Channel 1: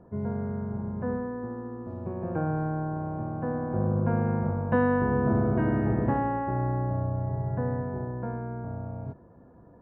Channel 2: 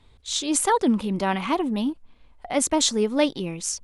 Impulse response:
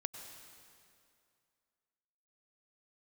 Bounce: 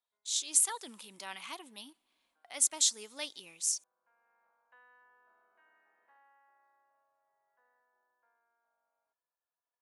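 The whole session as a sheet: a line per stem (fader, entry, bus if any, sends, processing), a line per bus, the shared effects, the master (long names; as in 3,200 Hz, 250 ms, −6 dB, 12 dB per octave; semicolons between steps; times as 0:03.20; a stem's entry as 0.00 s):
−14.5 dB, 0.00 s, no send, high-pass filter 910 Hz 12 dB per octave; automatic ducking −9 dB, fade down 0.20 s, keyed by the second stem
−3.0 dB, 0.00 s, send −24 dB, noise gate with hold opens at −44 dBFS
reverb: on, RT60 2.4 s, pre-delay 88 ms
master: first difference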